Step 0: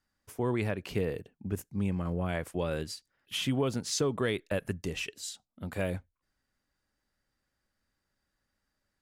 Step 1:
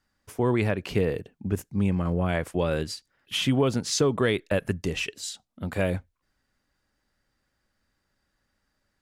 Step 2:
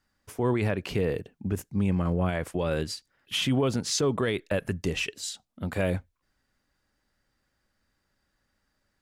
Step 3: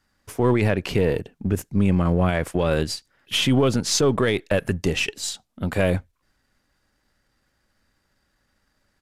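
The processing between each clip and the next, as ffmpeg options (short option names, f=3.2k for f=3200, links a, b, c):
-af "highshelf=f=10k:g=-7,volume=6.5dB"
-af "alimiter=limit=-17.5dB:level=0:latency=1:release=17"
-af "aeval=exprs='if(lt(val(0),0),0.708*val(0),val(0))':c=same,aresample=32000,aresample=44100,volume=7.5dB"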